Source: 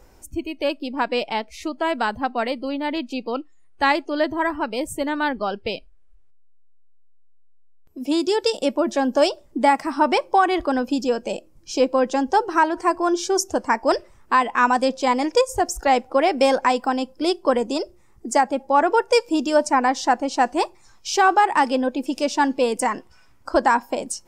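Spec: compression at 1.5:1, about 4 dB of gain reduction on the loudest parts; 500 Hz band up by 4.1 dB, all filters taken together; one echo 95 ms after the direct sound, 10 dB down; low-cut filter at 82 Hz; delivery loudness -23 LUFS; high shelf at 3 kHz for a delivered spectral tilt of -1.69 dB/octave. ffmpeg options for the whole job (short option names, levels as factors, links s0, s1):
-af "highpass=82,equalizer=f=500:t=o:g=4.5,highshelf=f=3000:g=8.5,acompressor=threshold=0.1:ratio=1.5,aecho=1:1:95:0.316,volume=0.794"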